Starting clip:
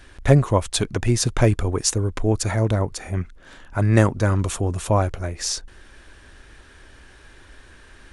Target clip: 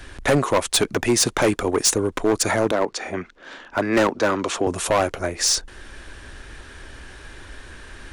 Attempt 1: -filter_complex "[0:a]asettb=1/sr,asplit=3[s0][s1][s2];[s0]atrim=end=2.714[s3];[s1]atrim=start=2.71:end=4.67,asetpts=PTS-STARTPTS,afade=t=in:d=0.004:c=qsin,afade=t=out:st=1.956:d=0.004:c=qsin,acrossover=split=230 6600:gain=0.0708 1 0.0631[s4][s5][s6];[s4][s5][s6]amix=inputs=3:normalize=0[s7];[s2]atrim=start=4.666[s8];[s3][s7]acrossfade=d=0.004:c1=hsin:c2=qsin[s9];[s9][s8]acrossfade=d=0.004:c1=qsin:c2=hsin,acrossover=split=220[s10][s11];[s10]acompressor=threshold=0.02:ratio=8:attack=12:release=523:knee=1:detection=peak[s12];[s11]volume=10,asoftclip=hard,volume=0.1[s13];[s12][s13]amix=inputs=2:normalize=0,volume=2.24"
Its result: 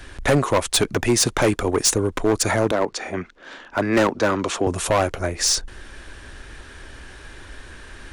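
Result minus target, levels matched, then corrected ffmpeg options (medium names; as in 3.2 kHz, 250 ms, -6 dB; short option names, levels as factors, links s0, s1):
compression: peak gain reduction -5.5 dB
-filter_complex "[0:a]asettb=1/sr,asplit=3[s0][s1][s2];[s0]atrim=end=2.714[s3];[s1]atrim=start=2.71:end=4.67,asetpts=PTS-STARTPTS,afade=t=in:d=0.004:c=qsin,afade=t=out:st=1.956:d=0.004:c=qsin,acrossover=split=230 6600:gain=0.0708 1 0.0631[s4][s5][s6];[s4][s5][s6]amix=inputs=3:normalize=0[s7];[s2]atrim=start=4.666[s8];[s3][s7]acrossfade=d=0.004:c1=hsin:c2=qsin[s9];[s9][s8]acrossfade=d=0.004:c1=qsin:c2=hsin,acrossover=split=220[s10][s11];[s10]acompressor=threshold=0.00944:ratio=8:attack=12:release=523:knee=1:detection=peak[s12];[s11]volume=10,asoftclip=hard,volume=0.1[s13];[s12][s13]amix=inputs=2:normalize=0,volume=2.24"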